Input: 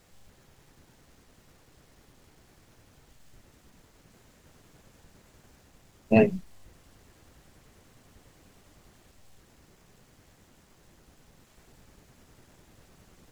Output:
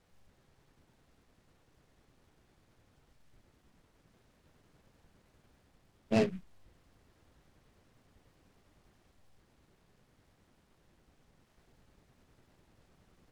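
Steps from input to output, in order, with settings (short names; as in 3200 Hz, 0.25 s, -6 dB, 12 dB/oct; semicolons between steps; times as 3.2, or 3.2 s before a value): air absorption 57 m; noise-modulated delay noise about 1800 Hz, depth 0.053 ms; gain -8.5 dB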